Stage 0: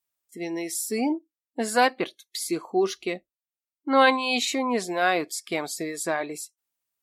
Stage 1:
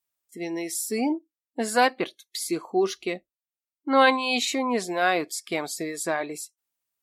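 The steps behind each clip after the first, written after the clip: no audible change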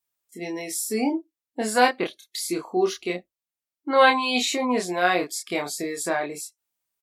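doubling 28 ms -3.5 dB

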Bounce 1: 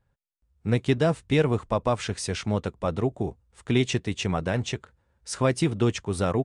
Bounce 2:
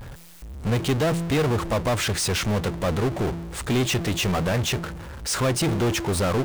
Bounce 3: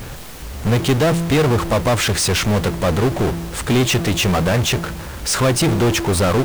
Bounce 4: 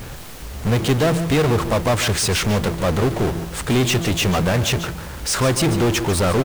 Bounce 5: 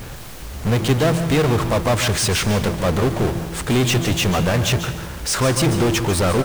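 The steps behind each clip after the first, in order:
de-hum 168.4 Hz, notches 2; power-law waveshaper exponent 0.35; trim -6 dB
added noise pink -43 dBFS; trim +6.5 dB
delay 144 ms -12 dB; trim -2 dB
reverberation, pre-delay 134 ms, DRR 12 dB

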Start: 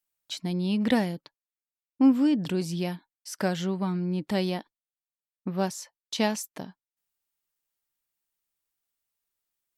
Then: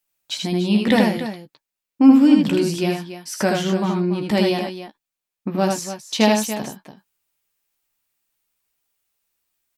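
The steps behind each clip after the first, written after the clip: peaking EQ 2.5 kHz +3.5 dB 0.28 oct; doubling 14 ms -7.5 dB; on a send: loudspeakers at several distances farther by 27 m -3 dB, 99 m -11 dB; on the sum: trim +6.5 dB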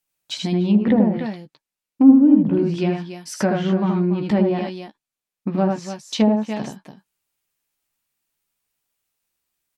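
low-pass that closes with the level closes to 650 Hz, closed at -12 dBFS; peaking EQ 160 Hz +4 dB 1.5 oct; trim -1.5 dB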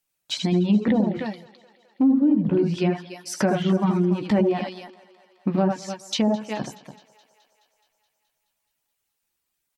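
reverb removal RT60 0.7 s; peak limiter -13 dBFS, peak gain reduction 11.5 dB; thinning echo 212 ms, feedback 68%, high-pass 340 Hz, level -20.5 dB; trim +1 dB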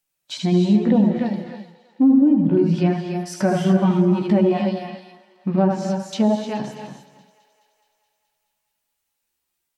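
harmonic-percussive split percussive -10 dB; gated-style reverb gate 330 ms rising, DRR 6 dB; trim +3.5 dB

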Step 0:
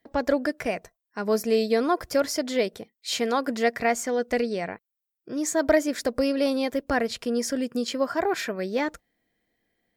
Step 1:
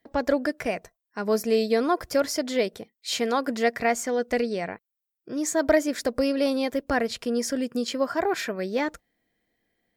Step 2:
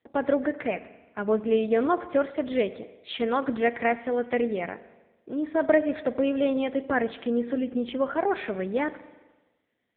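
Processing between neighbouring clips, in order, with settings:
no audible change
on a send at -13.5 dB: reverberation RT60 1.2 s, pre-delay 42 ms; on the sum: AMR-NB 6.7 kbps 8 kHz

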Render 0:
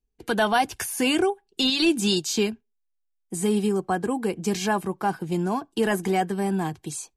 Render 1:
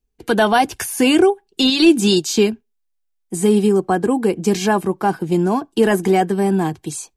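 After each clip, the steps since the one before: dynamic bell 340 Hz, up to +5 dB, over -35 dBFS, Q 0.82; trim +5 dB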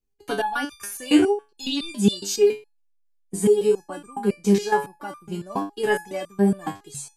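resonator arpeggio 7.2 Hz 99–1200 Hz; trim +5.5 dB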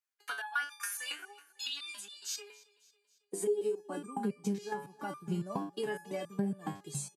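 compression 12:1, threshold -30 dBFS, peak gain reduction 19.5 dB; high-pass sweep 1.4 kHz -> 140 Hz, 2.29–4.36 s; feedback delay 274 ms, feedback 54%, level -22 dB; trim -4 dB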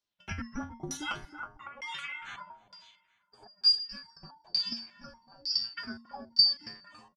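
four frequency bands reordered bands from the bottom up 2341; delay 320 ms -10 dB; LFO low-pass saw down 1.1 Hz 530–5200 Hz; trim +3 dB

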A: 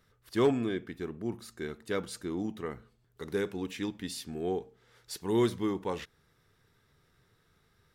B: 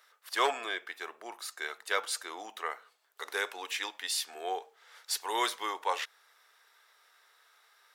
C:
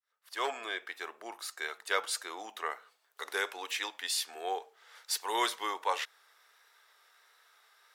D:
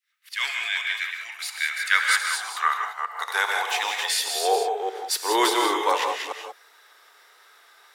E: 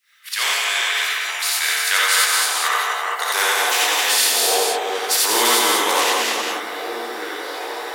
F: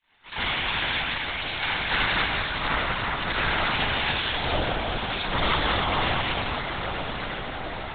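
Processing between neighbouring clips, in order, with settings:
high-pass 680 Hz 24 dB/octave; trim +8.5 dB
fade-in on the opening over 0.86 s; vibrato 1.4 Hz 30 cents
chunks repeated in reverse 204 ms, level -5 dB; gated-style reverb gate 210 ms rising, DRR 3.5 dB; high-pass sweep 2.2 kHz -> 280 Hz, 1.54–5.52 s; trim +7 dB
repeats whose band climbs or falls 763 ms, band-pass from 220 Hz, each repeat 0.7 oct, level -10.5 dB; gated-style reverb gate 110 ms rising, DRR -5 dB; spectrum-flattening compressor 2:1
cycle switcher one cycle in 2, muted; echo that smears into a reverb 921 ms, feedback 43%, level -8.5 dB; LPC vocoder at 8 kHz whisper; trim -2.5 dB

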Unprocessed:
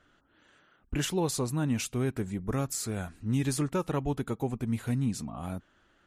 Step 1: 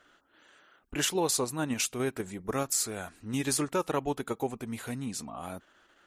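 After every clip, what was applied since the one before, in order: tone controls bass -13 dB, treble +2 dB; in parallel at -2.5 dB: level held to a coarse grid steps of 17 dB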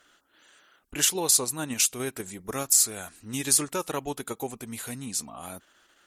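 peaking EQ 13 kHz +13 dB 2.4 oct; trim -2 dB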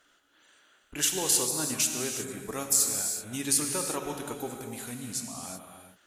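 gated-style reverb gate 400 ms flat, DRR 3 dB; trim -4 dB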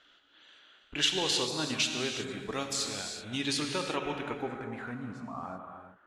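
low-pass sweep 3.6 kHz -> 1.2 kHz, 3.74–5.18 s

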